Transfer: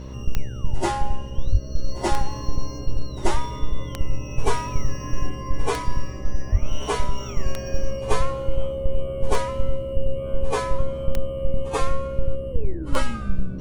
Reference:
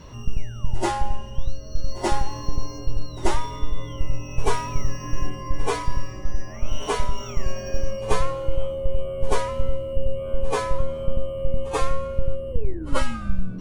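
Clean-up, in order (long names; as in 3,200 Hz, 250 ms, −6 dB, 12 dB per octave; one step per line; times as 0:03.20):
click removal
hum removal 65.6 Hz, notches 9
0:01.51–0:01.63: high-pass filter 140 Hz 24 dB per octave
0:06.51–0:06.63: high-pass filter 140 Hz 24 dB per octave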